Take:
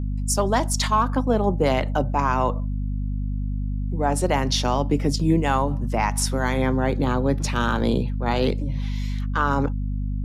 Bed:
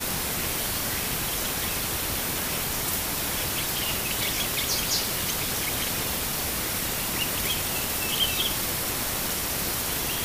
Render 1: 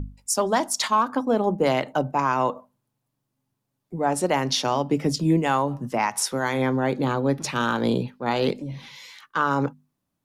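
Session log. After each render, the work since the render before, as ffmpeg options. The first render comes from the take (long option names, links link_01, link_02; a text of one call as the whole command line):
ffmpeg -i in.wav -af "bandreject=frequency=50:width_type=h:width=6,bandreject=frequency=100:width_type=h:width=6,bandreject=frequency=150:width_type=h:width=6,bandreject=frequency=200:width_type=h:width=6,bandreject=frequency=250:width_type=h:width=6" out.wav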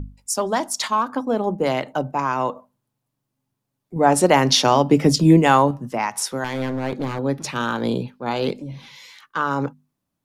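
ffmpeg -i in.wav -filter_complex "[0:a]asettb=1/sr,asplit=3[link_01][link_02][link_03];[link_01]atrim=end=6.444[link_04];[link_02]atrim=start=6.44:end=7.19,asetpts=PTS-STARTPTS,afade=type=in:duration=0.004:curve=qsin,afade=type=out:start_time=0.746:duration=0.004:curve=qsin,aeval=exprs='clip(val(0),-1,0.0562)':channel_layout=same[link_05];[link_03]atrim=start=7.186[link_06];[link_04][link_05]acrossfade=duration=0.004:curve1=hsin:curve2=qsin[link_07];[link_07][link_06]acrossfade=duration=0.004:curve1=qsin:curve2=hsin,asettb=1/sr,asplit=3[link_08][link_09][link_10];[link_08]atrim=end=7.874[link_11];[link_09]atrim=start=7.87:end=8.89,asetpts=PTS-STARTPTS,afade=type=in:duration=0.004:curve=qsin,afade=type=out:start_time=1.016:duration=0.004:curve=qsin,bandreject=frequency=1900:width=12[link_12];[link_10]atrim=start=8.886[link_13];[link_11][link_12]acrossfade=duration=0.004:curve1=hsin:curve2=qsin[link_14];[link_14][link_13]acrossfade=duration=0.004:curve1=qsin:curve2=hsin,asplit=3[link_15][link_16][link_17];[link_15]atrim=end=3.962[link_18];[link_16]atrim=start=3.958:end=5.712,asetpts=PTS-STARTPTS,volume=7.5dB[link_19];[link_17]atrim=start=5.708[link_20];[link_18][link_19]acrossfade=duration=0.004:curve1=hsin:curve2=hsin[link_21];[link_21][link_20]acrossfade=duration=0.004:curve1=hsin:curve2=hsin" out.wav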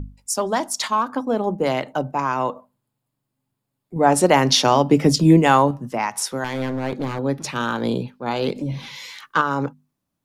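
ffmpeg -i in.wav -filter_complex "[0:a]asettb=1/sr,asplit=3[link_01][link_02][link_03];[link_01]atrim=end=2.394[link_04];[link_02]atrim=start=2.39:end=4.06,asetpts=PTS-STARTPTS,afade=type=in:duration=0.004:curve=qsin,afade=type=out:start_time=1.666:duration=0.004:curve=qsin,bandreject=frequency=5900:width=5.3[link_05];[link_03]atrim=start=4.056[link_06];[link_04][link_05]acrossfade=duration=0.004:curve1=hsin:curve2=qsin[link_07];[link_07][link_06]acrossfade=duration=0.004:curve1=qsin:curve2=hsin,asplit=3[link_08][link_09][link_10];[link_08]afade=type=out:start_time=8.55:duration=0.02[link_11];[link_09]acontrast=79,afade=type=in:start_time=8.55:duration=0.02,afade=type=out:start_time=9.4:duration=0.02[link_12];[link_10]afade=type=in:start_time=9.4:duration=0.02[link_13];[link_11][link_12][link_13]amix=inputs=3:normalize=0" out.wav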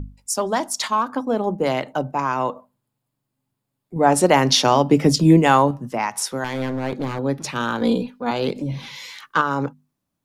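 ffmpeg -i in.wav -filter_complex "[0:a]asettb=1/sr,asplit=3[link_01][link_02][link_03];[link_01]atrim=end=7.814[link_04];[link_02]atrim=start=7.81:end=8.31,asetpts=PTS-STARTPTS,afade=type=in:duration=0.004:curve=qsin,afade=type=out:start_time=0.496:duration=0.004:curve=qsin,aecho=1:1:4.1:0.83,atrim=end_sample=22050[link_05];[link_03]atrim=start=8.306[link_06];[link_04][link_05]acrossfade=duration=0.004:curve1=hsin:curve2=qsin[link_07];[link_07][link_06]acrossfade=duration=0.004:curve1=qsin:curve2=hsin" out.wav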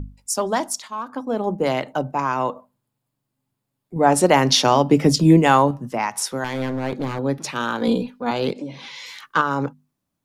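ffmpeg -i in.wav -filter_complex "[0:a]asettb=1/sr,asplit=3[link_01][link_02][link_03];[link_01]atrim=end=7.384[link_04];[link_02]atrim=start=7.38:end=7.88,asetpts=PTS-STARTPTS,afade=type=in:duration=0.004:curve=qsin,afade=type=out:start_time=0.496:duration=0.004:curve=qsin,highpass=frequency=190:poles=1[link_05];[link_03]atrim=start=7.876[link_06];[link_04][link_05]acrossfade=duration=0.004:curve1=hsin:curve2=qsin[link_07];[link_07][link_06]acrossfade=duration=0.004:curve1=qsin:curve2=hsin,asplit=3[link_08][link_09][link_10];[link_08]afade=type=out:start_time=8.53:duration=0.02[link_11];[link_09]highpass=290,lowpass=7200,afade=type=in:start_time=8.53:duration=0.02,afade=type=out:start_time=9.05:duration=0.02[link_12];[link_10]afade=type=in:start_time=9.05:duration=0.02[link_13];[link_11][link_12][link_13]amix=inputs=3:normalize=0,asplit=2[link_14][link_15];[link_14]atrim=end=0.8,asetpts=PTS-STARTPTS,afade=type=out:start_time=0.796:duration=0.004:curve=hsin:silence=0.149624[link_16];[link_15]atrim=start=0.8,asetpts=PTS-STARTPTS,afade=type=in:duration=0.73:silence=0.149624[link_17];[link_16][link_17]concat=n=2:v=0:a=1" out.wav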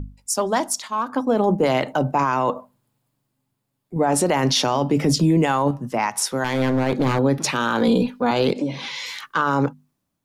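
ffmpeg -i in.wav -af "dynaudnorm=framelen=580:gausssize=3:maxgain=9.5dB,alimiter=limit=-10dB:level=0:latency=1:release=18" out.wav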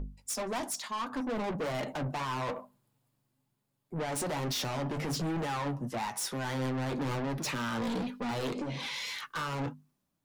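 ffmpeg -i in.wav -af "asoftclip=type=tanh:threshold=-27.5dB,flanger=delay=4.8:depth=4.1:regen=-52:speed=1.1:shape=sinusoidal" out.wav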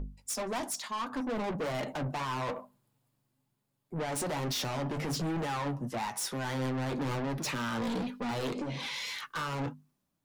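ffmpeg -i in.wav -af anull out.wav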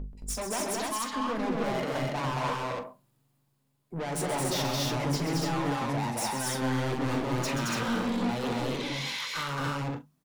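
ffmpeg -i in.wav -filter_complex "[0:a]asplit=2[link_01][link_02];[link_02]adelay=42,volume=-12dB[link_03];[link_01][link_03]amix=inputs=2:normalize=0,aecho=1:1:131.2|221.6|285.7:0.398|0.794|0.794" out.wav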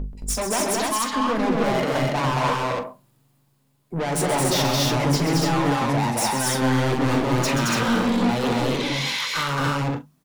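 ffmpeg -i in.wav -af "volume=8.5dB" out.wav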